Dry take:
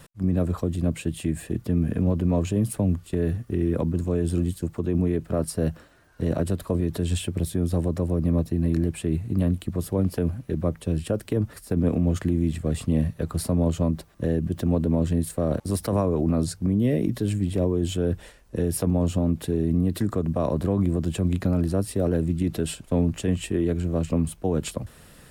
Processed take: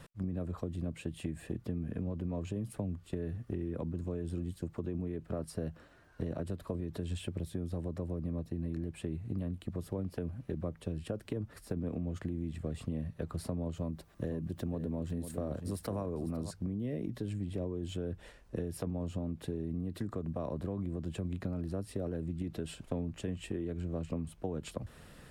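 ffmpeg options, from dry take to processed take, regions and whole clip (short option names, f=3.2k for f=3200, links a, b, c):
-filter_complex "[0:a]asettb=1/sr,asplit=3[a][b][c];[a]atrim=end=13.774[d];[b]atrim=start=13.77:end=16.51,asetpts=PTS-STARTPTS,afade=t=in:d=0.004:c=qsin,afade=t=out:st=2.736:d=0.004:c=qsin,highshelf=f=8.6k:g=8.5,aecho=1:1:502:0.282,atrim=end_sample=120834[e];[c]atrim=start=16.506[f];[d][e]acrossfade=d=0.004:c1=hsin:c2=qsin[g];[g][f]acrossfade=d=0.004:c1=qsin:c2=hsin,highshelf=f=6.4k:g=-10,acompressor=threshold=-30dB:ratio=6,volume=-3.5dB"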